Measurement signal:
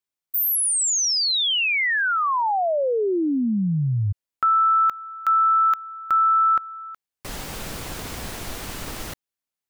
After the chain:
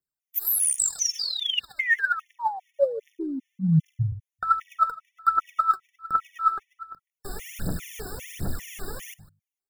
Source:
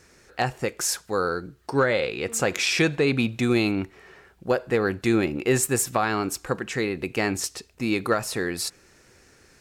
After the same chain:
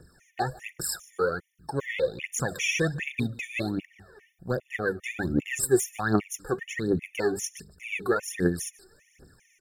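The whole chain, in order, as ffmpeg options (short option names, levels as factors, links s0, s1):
-filter_complex "[0:a]bandreject=f=50:t=h:w=6,bandreject=f=100:t=h:w=6,bandreject=f=150:t=h:w=6,bandreject=f=200:t=h:w=6,acrossover=split=520|4300[s0][s1][s2];[s2]aeval=exprs='clip(val(0),-1,0.126)':c=same[s3];[s0][s1][s3]amix=inputs=3:normalize=0,equalizer=f=160:t=o:w=0.67:g=6,equalizer=f=1000:t=o:w=0.67:g=-7,equalizer=f=4000:t=o:w=0.67:g=-8,aphaser=in_gain=1:out_gain=1:delay=2.8:decay=0.76:speed=1.3:type=triangular,aecho=1:1:152:0.0794,afftfilt=real='re*gt(sin(2*PI*2.5*pts/sr)*(1-2*mod(floor(b*sr/1024/1800),2)),0)':imag='im*gt(sin(2*PI*2.5*pts/sr)*(1-2*mod(floor(b*sr/1024/1800),2)),0)':win_size=1024:overlap=0.75,volume=0.631"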